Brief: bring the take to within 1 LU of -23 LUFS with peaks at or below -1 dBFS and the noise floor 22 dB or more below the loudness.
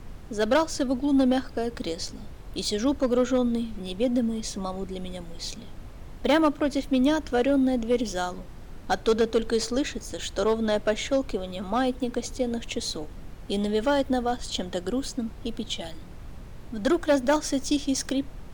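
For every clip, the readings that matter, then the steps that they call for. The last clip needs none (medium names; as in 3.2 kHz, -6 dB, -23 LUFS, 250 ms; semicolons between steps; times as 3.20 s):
clipped samples 0.6%; clipping level -15.5 dBFS; noise floor -42 dBFS; noise floor target -49 dBFS; loudness -26.5 LUFS; peak level -15.5 dBFS; loudness target -23.0 LUFS
-> clip repair -15.5 dBFS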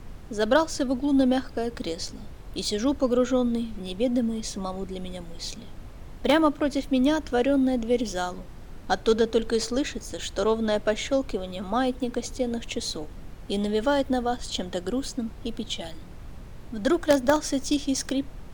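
clipped samples 0.0%; noise floor -42 dBFS; noise floor target -49 dBFS
-> noise print and reduce 7 dB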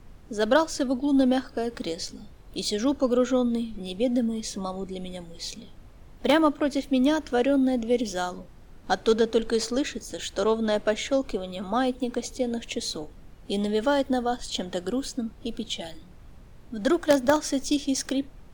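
noise floor -48 dBFS; noise floor target -49 dBFS
-> noise print and reduce 6 dB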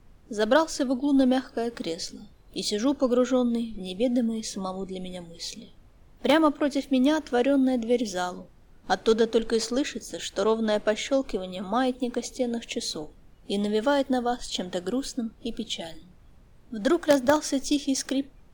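noise floor -54 dBFS; loudness -26.5 LUFS; peak level -6.5 dBFS; loudness target -23.0 LUFS
-> trim +3.5 dB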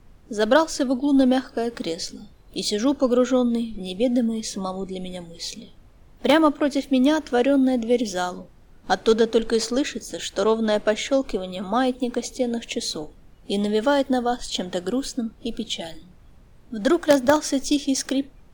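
loudness -23.0 LUFS; peak level -3.0 dBFS; noise floor -50 dBFS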